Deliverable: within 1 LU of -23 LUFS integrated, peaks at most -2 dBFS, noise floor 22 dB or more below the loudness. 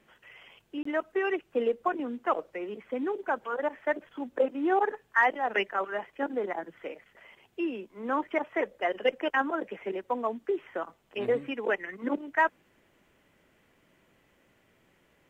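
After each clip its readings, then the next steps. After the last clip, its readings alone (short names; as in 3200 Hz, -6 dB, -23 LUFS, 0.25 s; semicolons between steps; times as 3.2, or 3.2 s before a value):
dropouts 1; longest dropout 24 ms; loudness -30.5 LUFS; peak -11.0 dBFS; loudness target -23.0 LUFS
-> interpolate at 0.83, 24 ms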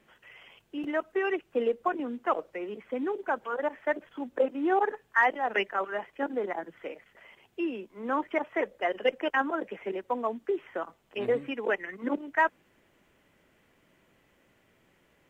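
dropouts 0; loudness -30.5 LUFS; peak -11.0 dBFS; loudness target -23.0 LUFS
-> gain +7.5 dB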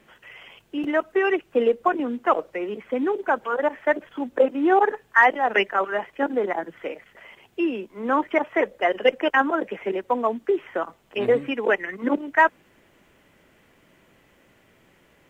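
loudness -23.0 LUFS; peak -3.5 dBFS; noise floor -60 dBFS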